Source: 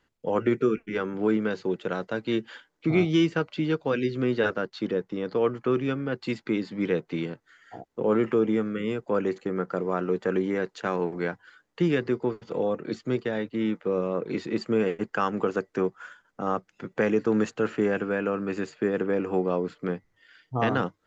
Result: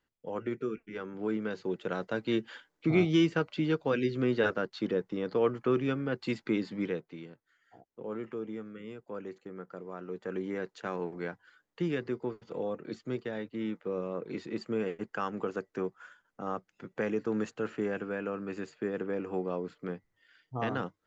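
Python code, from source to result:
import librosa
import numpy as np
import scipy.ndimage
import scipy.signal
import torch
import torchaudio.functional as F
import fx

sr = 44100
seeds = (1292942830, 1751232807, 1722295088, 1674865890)

y = fx.gain(x, sr, db=fx.line((0.94, -11.0), (2.11, -3.0), (6.74, -3.0), (7.16, -15.0), (9.97, -15.0), (10.52, -8.0)))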